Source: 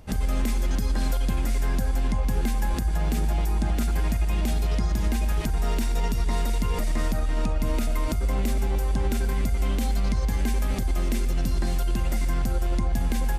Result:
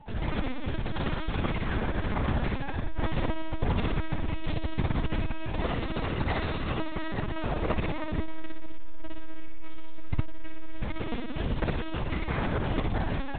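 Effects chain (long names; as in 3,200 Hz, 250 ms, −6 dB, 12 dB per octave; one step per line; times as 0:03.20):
mains-hum notches 60/120/180/240/300/360/420 Hz
steady tone 870 Hz −49 dBFS
harmonic generator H 3 −8 dB, 4 −45 dB, 5 −18 dB, 6 −34 dB, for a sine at −14.5 dBFS
on a send: flutter between parallel walls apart 10.4 metres, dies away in 0.99 s
on the sum: linear-prediction vocoder at 8 kHz pitch kept
saturating transformer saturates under 36 Hz
level +3.5 dB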